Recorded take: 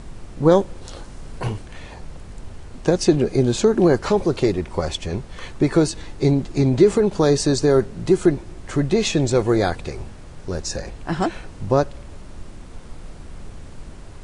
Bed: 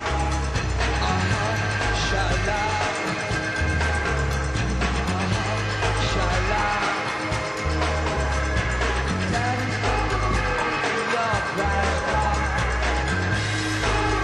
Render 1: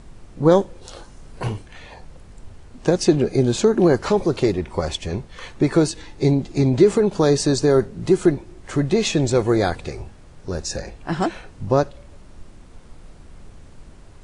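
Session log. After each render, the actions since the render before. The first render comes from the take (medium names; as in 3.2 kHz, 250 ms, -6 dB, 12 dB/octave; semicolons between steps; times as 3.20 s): noise print and reduce 6 dB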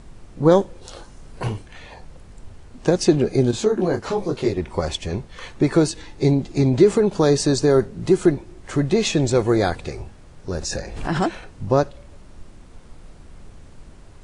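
3.51–4.57 s: detune thickener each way 36 cents; 10.56–11.49 s: swell ahead of each attack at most 64 dB/s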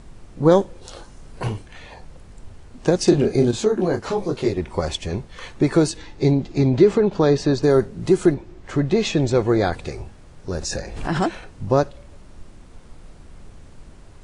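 3.04–3.48 s: doubling 35 ms -5.5 dB; 5.97–7.62 s: low-pass 7.4 kHz -> 3.3 kHz; 8.34–9.73 s: distance through air 74 m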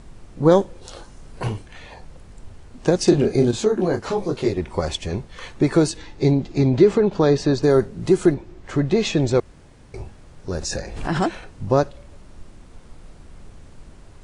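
9.40–9.94 s: room tone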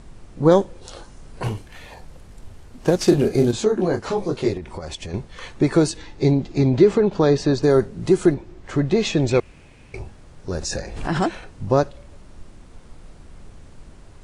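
1.44–3.53 s: CVSD coder 64 kbps; 4.57–5.14 s: compression, threshold -28 dBFS; 9.28–9.99 s: peaking EQ 2.5 kHz +12.5 dB 0.48 oct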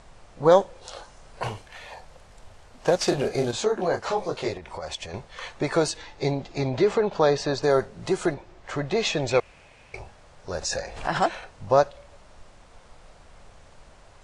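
low-pass 8.4 kHz 12 dB/octave; resonant low shelf 440 Hz -9 dB, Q 1.5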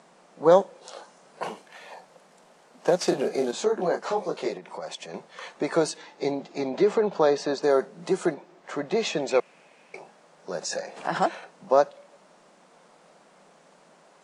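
elliptic high-pass 170 Hz, stop band 40 dB; peaking EQ 3.3 kHz -3.5 dB 2.1 oct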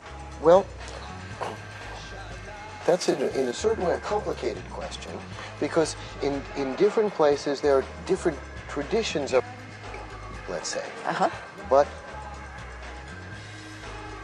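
add bed -16.5 dB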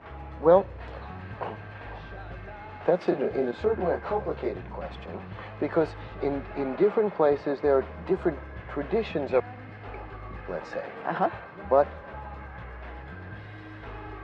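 distance through air 440 m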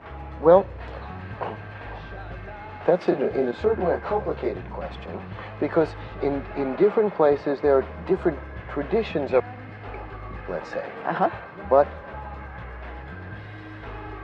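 trim +3.5 dB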